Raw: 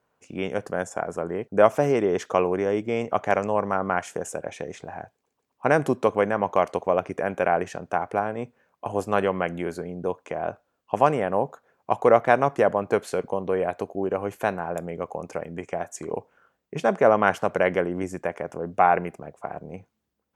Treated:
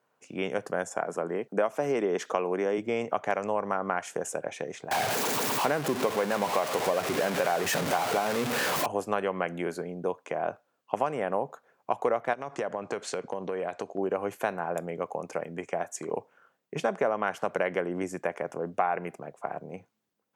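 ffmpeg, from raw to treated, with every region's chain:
-filter_complex "[0:a]asettb=1/sr,asplit=3[a][b][c];[a]atrim=end=1.014[d];[b]atrim=start=1.01:end=2.78,asetpts=PTS-STARTPTS,afade=t=in:d=0.004:c=qsin,afade=t=out:st=1.766:d=0.004:c=qsin,highpass=f=140:w=0.5412,highpass=f=140:w=1.3066,acompressor=mode=upward:threshold=-34dB:ratio=2.5:attack=3.2:release=140:knee=2.83:detection=peak[e];[c]atrim=start=2.776[f];[d][e]acrossfade=d=0.004:c1=hsin:c2=qsin[g];[g][f]acrossfade=d=0.004:c1=qsin:c2=hsin,asettb=1/sr,asplit=3[h][i][j];[h]atrim=end=4.914[k];[i]atrim=start=4.91:end=8.86,asetpts=PTS-STARTPTS,afade=t=in:d=0.004:c=qsin,afade=t=out:st=3.946:d=0.004:c=qsin,aeval=exprs='val(0)+0.5*0.0944*sgn(val(0))':c=same,deesser=0.25[l];[j]atrim=start=8.856[m];[k][l]acrossfade=d=0.004:c1=hsin:c2=qsin[n];[n][m]acrossfade=d=0.004:c1=qsin:c2=hsin,asettb=1/sr,asplit=3[o][p][q];[o]atrim=end=12.334[r];[p]atrim=start=12.33:end=13.98,asetpts=PTS-STARTPTS,afade=t=in:d=0.004:c=qsin,afade=t=out:st=1.646:d=0.004:c=qsin,lowpass=f=7.9k:w=0.5412,lowpass=f=7.9k:w=1.3066,acompressor=threshold=-26dB:ratio=6:attack=3.2:release=140:knee=1:detection=peak,highshelf=f=4.1k:g=6.5[s];[q]atrim=start=13.976[t];[r][s]acrossfade=d=0.004:c1=hsin:c2=qsin[u];[u][t]acrossfade=d=0.004:c1=qsin:c2=hsin,highpass=f=110:w=0.5412,highpass=f=110:w=1.3066,lowshelf=f=280:g=-5.5,acompressor=threshold=-23dB:ratio=6"

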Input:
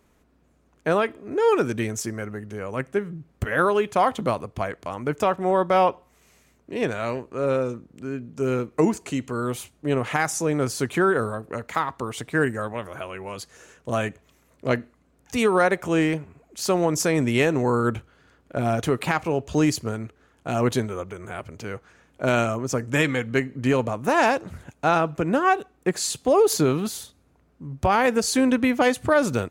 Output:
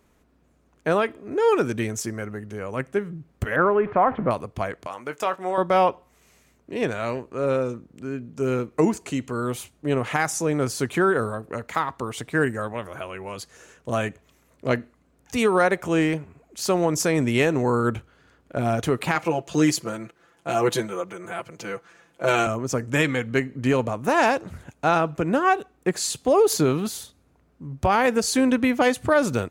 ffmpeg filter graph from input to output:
-filter_complex "[0:a]asettb=1/sr,asplit=3[a][b][c];[a]atrim=end=3.564[d];[b]atrim=start=3.56:end=4.31,asetpts=PTS-STARTPTS,afade=t=in:d=0.004:c=qsin,afade=t=out:st=0.746:d=0.004:c=qsin,aeval=exprs='val(0)+0.5*0.0282*sgn(val(0))':c=same,lowpass=f=1.9k:w=0.5412,lowpass=f=1.9k:w=1.3066[e];[c]atrim=start=4.306[f];[d][e]acrossfade=d=0.004:c1=hsin:c2=qsin[g];[g][f]acrossfade=d=0.004:c1=qsin:c2=hsin,asettb=1/sr,asplit=3[h][i][j];[h]atrim=end=4.874[k];[i]atrim=start=4.87:end=5.58,asetpts=PTS-STARTPTS,afade=t=in:d=0.004:c=qsin,afade=t=out:st=0.706:d=0.004:c=qsin,highpass=f=770:p=1,asplit=2[l][m];[m]adelay=22,volume=-13dB[n];[l][n]amix=inputs=2:normalize=0,atrim=end_sample=31311[o];[j]atrim=start=5.576[p];[k][o]acrossfade=d=0.004:c1=hsin:c2=qsin[q];[q][p]acrossfade=d=0.004:c1=qsin:c2=hsin,asettb=1/sr,asplit=3[r][s][t];[r]atrim=end=19.154[u];[s]atrim=start=19.15:end=22.47,asetpts=PTS-STARTPTS,afade=t=in:d=0.004:c=qsin,afade=t=out:st=3.316:d=0.004:c=qsin,highpass=f=290:p=1,aecho=1:1:5.9:0.99,atrim=end_sample=146412[v];[t]atrim=start=22.466[w];[u][v]acrossfade=d=0.004:c1=hsin:c2=qsin[x];[x][w]acrossfade=d=0.004:c1=qsin:c2=hsin"

